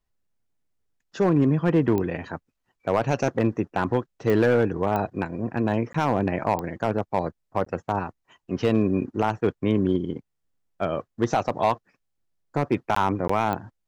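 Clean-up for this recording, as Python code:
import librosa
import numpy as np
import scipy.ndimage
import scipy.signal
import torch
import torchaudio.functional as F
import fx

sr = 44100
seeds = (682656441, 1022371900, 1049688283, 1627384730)

y = fx.fix_declip(x, sr, threshold_db=-12.5)
y = fx.fix_declick_ar(y, sr, threshold=10.0)
y = fx.fix_interpolate(y, sr, at_s=(5.93, 7.65, 12.95, 13.28), length_ms=14.0)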